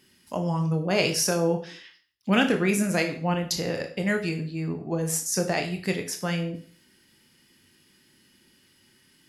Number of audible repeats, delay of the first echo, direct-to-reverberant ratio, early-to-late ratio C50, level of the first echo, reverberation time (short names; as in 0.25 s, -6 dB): none, none, 4.5 dB, 10.5 dB, none, 0.45 s